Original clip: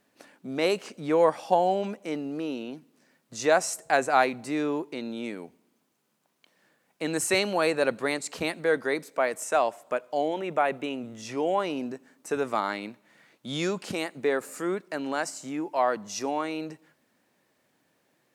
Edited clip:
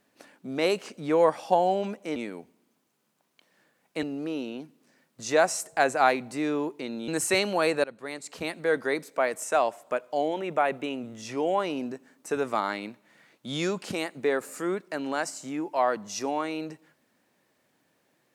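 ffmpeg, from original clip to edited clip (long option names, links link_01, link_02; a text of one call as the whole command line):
ffmpeg -i in.wav -filter_complex "[0:a]asplit=5[link_01][link_02][link_03][link_04][link_05];[link_01]atrim=end=2.162[link_06];[link_02]atrim=start=5.208:end=7.082[link_07];[link_03]atrim=start=2.158:end=5.212[link_08];[link_04]atrim=start=7.078:end=7.84,asetpts=PTS-STARTPTS,afade=type=out:start_time=0.758:duration=0.004:curve=hsin:silence=0.125893[link_09];[link_05]atrim=start=7.84,asetpts=PTS-STARTPTS,afade=type=in:duration=0.96:silence=0.125893[link_10];[link_06][link_07]acrossfade=duration=0.004:curve1=hsin:curve2=hsin[link_11];[link_11][link_08]acrossfade=duration=0.004:curve1=hsin:curve2=hsin[link_12];[link_09][link_10]concat=n=2:v=0:a=1[link_13];[link_12][link_13]acrossfade=duration=0.004:curve1=hsin:curve2=hsin" out.wav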